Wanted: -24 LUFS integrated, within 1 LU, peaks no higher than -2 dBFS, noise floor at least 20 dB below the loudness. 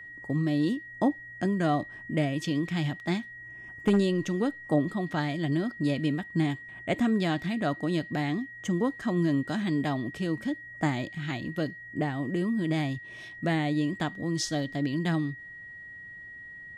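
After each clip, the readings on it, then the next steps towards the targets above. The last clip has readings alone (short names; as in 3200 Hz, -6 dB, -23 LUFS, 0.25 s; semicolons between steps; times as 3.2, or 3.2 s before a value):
steady tone 1900 Hz; tone level -42 dBFS; loudness -29.5 LUFS; peak -12.0 dBFS; loudness target -24.0 LUFS
-> notch 1900 Hz, Q 30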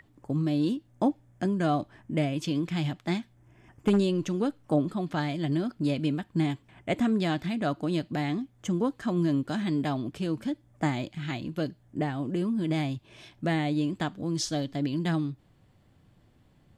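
steady tone none; loudness -29.5 LUFS; peak -12.0 dBFS; loudness target -24.0 LUFS
-> gain +5.5 dB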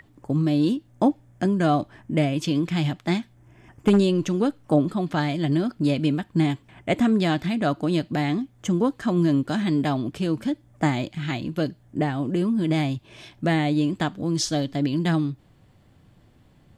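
loudness -24.0 LUFS; peak -6.5 dBFS; noise floor -57 dBFS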